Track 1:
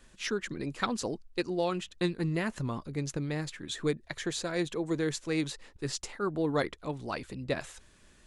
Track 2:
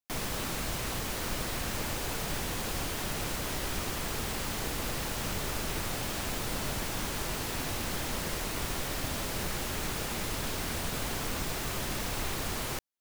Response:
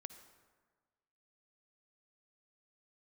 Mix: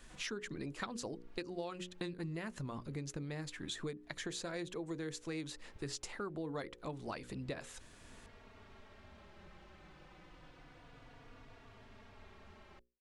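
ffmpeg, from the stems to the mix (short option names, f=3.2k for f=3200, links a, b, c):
-filter_complex "[0:a]volume=1.5dB,asplit=2[a][b];[1:a]lowpass=2.7k,asplit=2[c][d];[d]adelay=3.5,afreqshift=-0.29[e];[c][e]amix=inputs=2:normalize=1,volume=-19dB[f];[b]apad=whole_len=573653[g];[f][g]sidechaincompress=threshold=-37dB:ratio=12:attack=6.4:release=692[h];[a][h]amix=inputs=2:normalize=0,bandreject=f=60:t=h:w=6,bandreject=f=120:t=h:w=6,bandreject=f=180:t=h:w=6,bandreject=f=240:t=h:w=6,bandreject=f=300:t=h:w=6,bandreject=f=360:t=h:w=6,bandreject=f=420:t=h:w=6,bandreject=f=480:t=h:w=6,bandreject=f=540:t=h:w=6,acompressor=threshold=-40dB:ratio=5"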